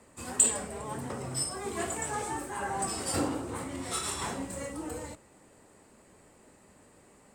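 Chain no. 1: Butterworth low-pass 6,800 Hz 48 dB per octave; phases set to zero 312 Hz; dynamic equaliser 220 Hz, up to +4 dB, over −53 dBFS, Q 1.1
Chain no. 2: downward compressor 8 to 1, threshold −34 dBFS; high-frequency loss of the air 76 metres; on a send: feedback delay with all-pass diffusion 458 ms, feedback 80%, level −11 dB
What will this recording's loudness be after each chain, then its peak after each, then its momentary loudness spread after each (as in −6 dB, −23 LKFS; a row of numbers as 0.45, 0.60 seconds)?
−37.0, −40.0 LKFS; −15.0, −25.5 dBFS; 8, 12 LU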